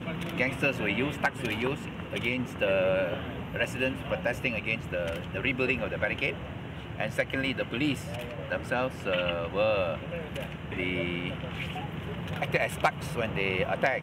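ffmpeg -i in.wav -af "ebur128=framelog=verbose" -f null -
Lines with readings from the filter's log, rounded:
Integrated loudness:
  I:         -30.2 LUFS
  Threshold: -40.2 LUFS
Loudness range:
  LRA:         2.2 LU
  Threshold: -50.4 LUFS
  LRA low:   -31.6 LUFS
  LRA high:  -29.4 LUFS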